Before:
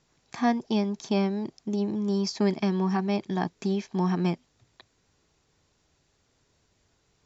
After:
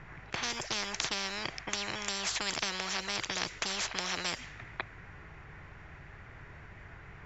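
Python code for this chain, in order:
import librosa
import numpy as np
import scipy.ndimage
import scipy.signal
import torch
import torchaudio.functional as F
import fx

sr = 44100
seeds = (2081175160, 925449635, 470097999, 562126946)

y = fx.env_lowpass(x, sr, base_hz=1400.0, full_db=-21.5)
y = fx.graphic_eq(y, sr, hz=(250, 500, 1000, 2000, 4000), db=(-11, -9, -4, 10, -7))
y = fx.spectral_comp(y, sr, ratio=10.0)
y = F.gain(torch.from_numpy(y), 7.5).numpy()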